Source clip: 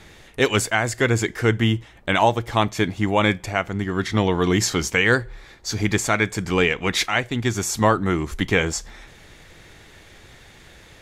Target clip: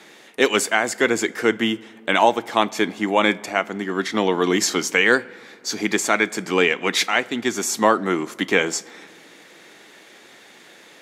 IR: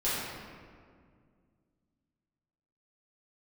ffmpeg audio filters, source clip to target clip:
-filter_complex "[0:a]highpass=frequency=220:width=0.5412,highpass=frequency=220:width=1.3066,asplit=2[link_01][link_02];[1:a]atrim=start_sample=2205[link_03];[link_02][link_03]afir=irnorm=-1:irlink=0,volume=-30.5dB[link_04];[link_01][link_04]amix=inputs=2:normalize=0,volume=1.5dB"

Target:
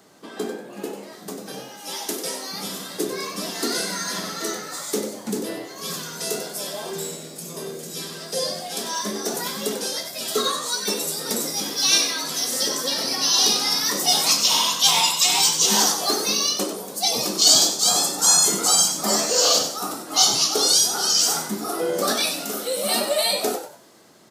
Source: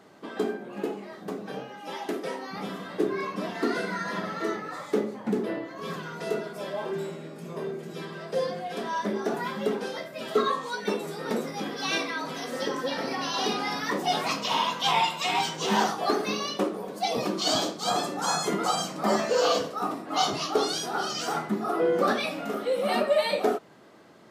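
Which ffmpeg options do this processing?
ffmpeg -i in.wav -filter_complex "[0:a]bass=frequency=250:gain=1,treble=frequency=4000:gain=13,asplit=4[link_01][link_02][link_03][link_04];[link_02]adelay=95,afreqshift=85,volume=-9dB[link_05];[link_03]adelay=190,afreqshift=170,volume=-19.5dB[link_06];[link_04]adelay=285,afreqshift=255,volume=-29.9dB[link_07];[link_01][link_05][link_06][link_07]amix=inputs=4:normalize=0,acrossover=split=360|4000[link_08][link_09][link_10];[link_10]dynaudnorm=framelen=260:gausssize=11:maxgain=11.5dB[link_11];[link_08][link_09][link_11]amix=inputs=3:normalize=0,volume=-1dB" out.wav

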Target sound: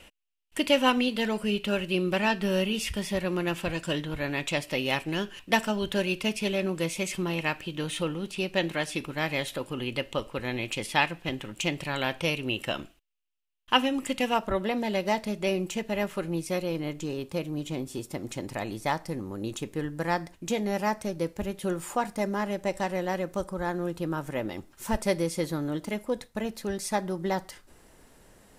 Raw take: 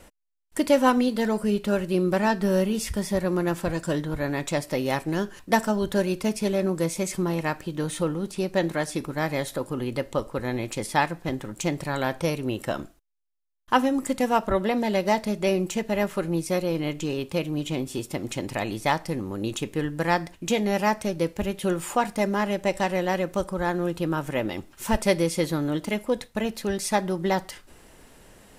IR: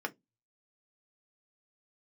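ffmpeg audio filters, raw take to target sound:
-af "asetnsamples=nb_out_samples=441:pad=0,asendcmd='14.34 equalizer g 4.5;16.76 equalizer g -3',equalizer=frequency=2800:width_type=o:width=0.74:gain=15,volume=-4.5dB"

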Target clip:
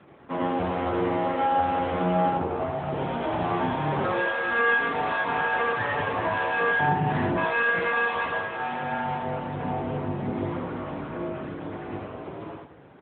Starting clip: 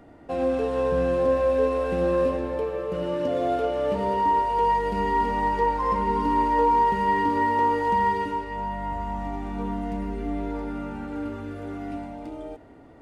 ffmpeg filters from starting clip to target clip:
ffmpeg -i in.wav -filter_complex "[0:a]asplit=3[link_01][link_02][link_03];[link_01]afade=type=out:start_time=2.3:duration=0.02[link_04];[link_02]lowpass=frequency=1100:width=0.5412,lowpass=frequency=1100:width=1.3066,afade=type=in:start_time=2.3:duration=0.02,afade=type=out:start_time=2.76:duration=0.02[link_05];[link_03]afade=type=in:start_time=2.76:duration=0.02[link_06];[link_04][link_05][link_06]amix=inputs=3:normalize=0,asplit=3[link_07][link_08][link_09];[link_07]afade=type=out:start_time=6.78:duration=0.02[link_10];[link_08]asubboost=boost=10:cutoff=210,afade=type=in:start_time=6.78:duration=0.02,afade=type=out:start_time=7.35:duration=0.02[link_11];[link_09]afade=type=in:start_time=7.35:duration=0.02[link_12];[link_10][link_11][link_12]amix=inputs=3:normalize=0,alimiter=limit=-17dB:level=0:latency=1:release=74,asettb=1/sr,asplit=3[link_13][link_14][link_15];[link_13]atrim=end=4.694[link_16];[link_14]atrim=start=4.69:end=5.46,asetpts=PTS-STARTPTS,afade=type=in:duration=0.004:curve=qsin,afade=type=out:start_time=0.766:duration=0.004:curve=qsin,acompressor=mode=upward:threshold=-41dB:ratio=2.5[link_17];[link_15]atrim=start=5.456[link_18];[link_16][link_17]acrossfade=duration=0.004:curve1=hsin:curve2=qsin[link_19];[link_19][link_18]acrossfade=duration=0.004:curve1=qsin:curve2=hsin,afreqshift=-120,aeval=exprs='abs(val(0))':channel_layout=same,asplit=2[link_20][link_21];[link_21]adelay=28,volume=-9.5dB[link_22];[link_20][link_22]amix=inputs=2:normalize=0,aecho=1:1:83|166|249:0.631|0.126|0.0252,volume=3.5dB" -ar 8000 -c:a libopencore_amrnb -b:a 10200 out.amr

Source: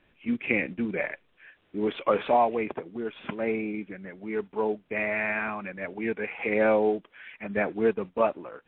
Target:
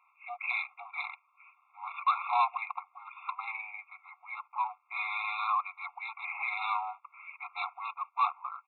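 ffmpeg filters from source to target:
ffmpeg -i in.wav -af "highpass=230,equalizer=frequency=250:width_type=q:width=4:gain=9,equalizer=frequency=380:width_type=q:width=4:gain=-4,equalizer=frequency=540:width_type=q:width=4:gain=-3,equalizer=frequency=780:width_type=q:width=4:gain=-7,equalizer=frequency=1100:width_type=q:width=4:gain=10,equalizer=frequency=1800:width_type=q:width=4:gain=6,lowpass=frequency=2200:width=0.5412,lowpass=frequency=2200:width=1.3066,aresample=8000,asoftclip=type=tanh:threshold=-24dB,aresample=44100,afftfilt=real='re*eq(mod(floor(b*sr/1024/690),2),1)':imag='im*eq(mod(floor(b*sr/1024/690),2),1)':win_size=1024:overlap=0.75,volume=4dB" out.wav

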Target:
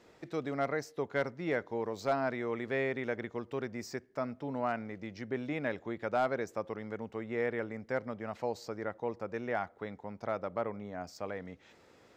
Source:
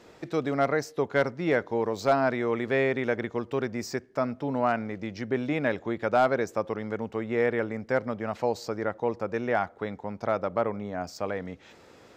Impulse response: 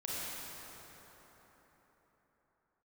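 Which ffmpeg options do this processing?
-af "equalizer=frequency=2000:width=6.1:gain=2.5,volume=-8dB"

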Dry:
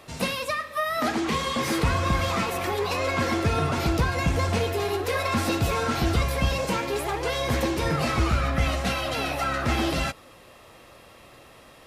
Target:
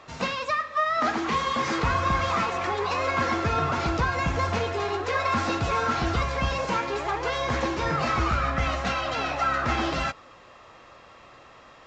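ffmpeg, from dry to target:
ffmpeg -i in.wav -af "equalizer=frequency=1200:width=0.88:gain=8,volume=-4dB" -ar 16000 -c:a pcm_mulaw out.wav

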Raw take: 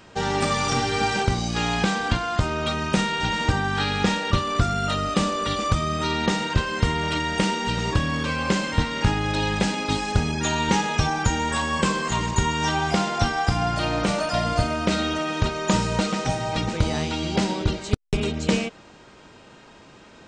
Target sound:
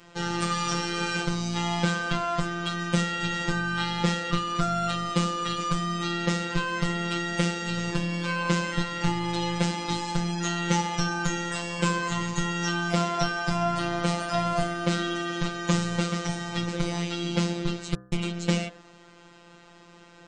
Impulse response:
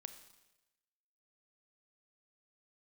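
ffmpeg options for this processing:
-af "afftfilt=real='hypot(re,im)*cos(PI*b)':imag='0':win_size=1024:overlap=0.75,bandreject=frequency=63.88:width_type=h:width=4,bandreject=frequency=127.76:width_type=h:width=4,bandreject=frequency=191.64:width_type=h:width=4,bandreject=frequency=255.52:width_type=h:width=4,bandreject=frequency=319.4:width_type=h:width=4,bandreject=frequency=383.28:width_type=h:width=4,bandreject=frequency=447.16:width_type=h:width=4,bandreject=frequency=511.04:width_type=h:width=4,bandreject=frequency=574.92:width_type=h:width=4,bandreject=frequency=638.8:width_type=h:width=4,bandreject=frequency=702.68:width_type=h:width=4,bandreject=frequency=766.56:width_type=h:width=4,bandreject=frequency=830.44:width_type=h:width=4,bandreject=frequency=894.32:width_type=h:width=4,bandreject=frequency=958.2:width_type=h:width=4,bandreject=frequency=1022.08:width_type=h:width=4,bandreject=frequency=1085.96:width_type=h:width=4,bandreject=frequency=1149.84:width_type=h:width=4,bandreject=frequency=1213.72:width_type=h:width=4,bandreject=frequency=1277.6:width_type=h:width=4,bandreject=frequency=1341.48:width_type=h:width=4,bandreject=frequency=1405.36:width_type=h:width=4,bandreject=frequency=1469.24:width_type=h:width=4,bandreject=frequency=1533.12:width_type=h:width=4,bandreject=frequency=1597:width_type=h:width=4,bandreject=frequency=1660.88:width_type=h:width=4,bandreject=frequency=1724.76:width_type=h:width=4,bandreject=frequency=1788.64:width_type=h:width=4,bandreject=frequency=1852.52:width_type=h:width=4"

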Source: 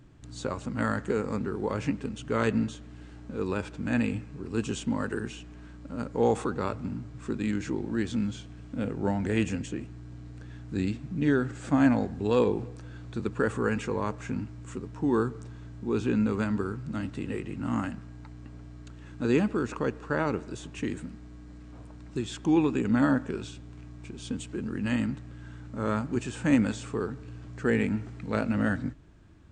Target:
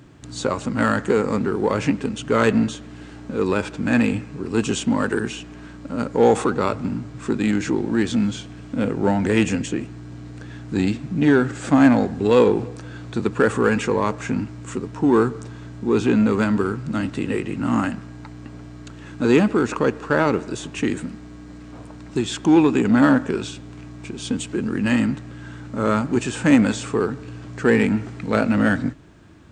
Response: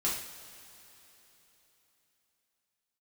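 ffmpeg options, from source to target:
-filter_complex "[0:a]asplit=2[link_01][link_02];[link_02]volume=25dB,asoftclip=hard,volume=-25dB,volume=-5.5dB[link_03];[link_01][link_03]amix=inputs=2:normalize=0,highpass=frequency=160:poles=1,volume=7.5dB"

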